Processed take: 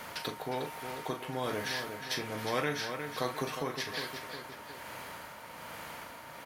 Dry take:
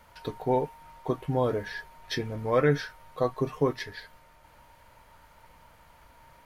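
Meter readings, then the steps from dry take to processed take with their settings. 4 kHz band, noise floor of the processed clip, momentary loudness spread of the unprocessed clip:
+4.0 dB, -48 dBFS, 15 LU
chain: high-pass 180 Hz 12 dB/octave; in parallel at -1 dB: compression, threshold -37 dBFS, peak gain reduction 17.5 dB; on the sum: tremolo 1.2 Hz, depth 53%; doubling 38 ms -11 dB; on a send: feedback delay 359 ms, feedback 35%, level -14 dB; on the sum: spectrum-flattening compressor 2:1; trim -6.5 dB

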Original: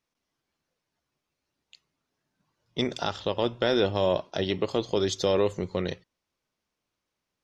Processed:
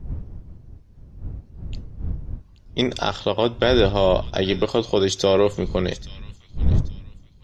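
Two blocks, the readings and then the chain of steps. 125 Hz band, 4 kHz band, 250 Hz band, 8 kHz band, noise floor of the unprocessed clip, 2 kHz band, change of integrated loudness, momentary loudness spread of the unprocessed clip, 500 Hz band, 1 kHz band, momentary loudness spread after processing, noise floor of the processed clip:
+11.0 dB, +6.5 dB, +7.0 dB, +6.5 dB, -85 dBFS, +6.5 dB, +6.0 dB, 7 LU, +6.5 dB, +6.5 dB, 20 LU, -50 dBFS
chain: wind noise 82 Hz -35 dBFS; feedback echo behind a high-pass 829 ms, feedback 32%, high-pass 2 kHz, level -15.5 dB; trim +6.5 dB

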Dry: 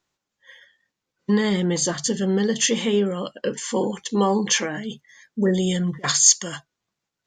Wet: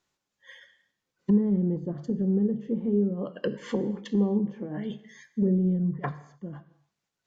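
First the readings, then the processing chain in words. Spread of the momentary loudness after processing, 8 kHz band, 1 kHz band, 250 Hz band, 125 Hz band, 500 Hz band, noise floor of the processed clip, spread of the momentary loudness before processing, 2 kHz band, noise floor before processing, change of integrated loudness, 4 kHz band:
15 LU, under -35 dB, -13.5 dB, -2.0 dB, -1.5 dB, -7.5 dB, -85 dBFS, 15 LU, -16.0 dB, -84 dBFS, -6.5 dB, -24.5 dB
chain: low-pass that closes with the level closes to 310 Hz, closed at -20 dBFS; gated-style reverb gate 310 ms falling, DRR 12 dB; trim -2 dB

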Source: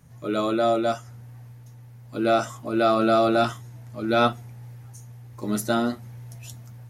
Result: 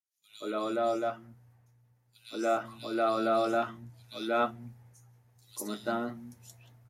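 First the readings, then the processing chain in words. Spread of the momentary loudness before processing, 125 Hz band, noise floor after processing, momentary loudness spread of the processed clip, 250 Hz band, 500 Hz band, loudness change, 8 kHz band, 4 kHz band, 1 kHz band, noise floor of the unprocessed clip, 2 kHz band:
22 LU, -15.0 dB, -70 dBFS, 19 LU, -10.0 dB, -7.5 dB, -8.5 dB, -7.5 dB, -9.5 dB, -7.5 dB, -45 dBFS, -7.5 dB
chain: expander -37 dBFS; bass shelf 160 Hz -7.5 dB; three bands offset in time highs, mids, lows 180/400 ms, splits 180/3200 Hz; trim -7 dB

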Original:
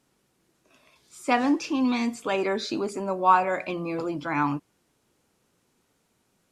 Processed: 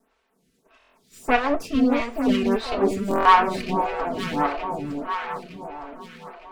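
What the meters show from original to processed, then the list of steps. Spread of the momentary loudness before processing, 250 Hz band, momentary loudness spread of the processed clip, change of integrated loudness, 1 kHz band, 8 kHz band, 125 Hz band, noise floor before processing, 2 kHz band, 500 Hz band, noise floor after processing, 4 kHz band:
10 LU, +3.5 dB, 20 LU, +3.5 dB, +4.5 dB, -1.0 dB, +3.5 dB, -71 dBFS, +4.0 dB, +4.0 dB, -69 dBFS, +4.0 dB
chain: comb filter that takes the minimum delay 4.5 ms; tone controls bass 0 dB, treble -6 dB; overload inside the chain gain 13.5 dB; on a send: echo whose repeats swap between lows and highs 455 ms, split 840 Hz, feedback 68%, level -3 dB; on the sum: buffer glitch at 0.79/3.09 s, samples 1024, times 6; lamp-driven phase shifter 1.6 Hz; trim +7 dB

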